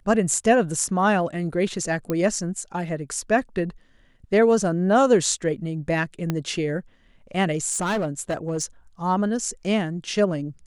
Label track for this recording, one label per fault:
2.100000	2.100000	pop -12 dBFS
6.300000	6.300000	pop -11 dBFS
7.710000	8.640000	clipped -20.5 dBFS

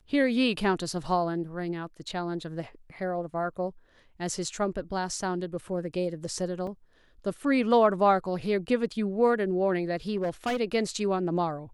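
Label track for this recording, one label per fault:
6.670000	6.670000	gap 3 ms
10.160000	10.570000	clipped -24.5 dBFS

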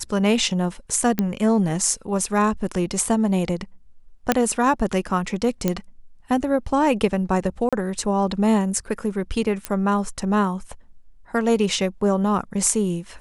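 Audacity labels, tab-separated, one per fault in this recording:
1.190000	1.190000	pop -8 dBFS
4.320000	4.320000	pop -2 dBFS
5.680000	5.680000	pop -7 dBFS
7.690000	7.730000	gap 36 ms
9.650000	9.650000	pop -9 dBFS

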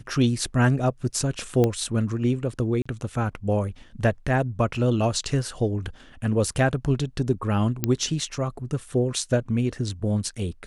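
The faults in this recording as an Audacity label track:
1.640000	1.640000	pop -10 dBFS
2.820000	2.850000	gap 35 ms
7.840000	7.840000	pop -7 dBFS

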